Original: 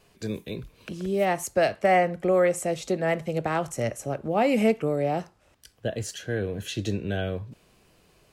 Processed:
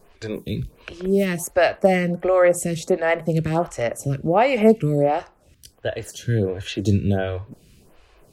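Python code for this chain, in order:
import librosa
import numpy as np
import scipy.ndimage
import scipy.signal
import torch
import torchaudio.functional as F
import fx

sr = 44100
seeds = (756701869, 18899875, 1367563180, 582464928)

y = fx.low_shelf(x, sr, hz=110.0, db=11.0)
y = fx.stagger_phaser(y, sr, hz=1.4)
y = F.gain(torch.from_numpy(y), 7.5).numpy()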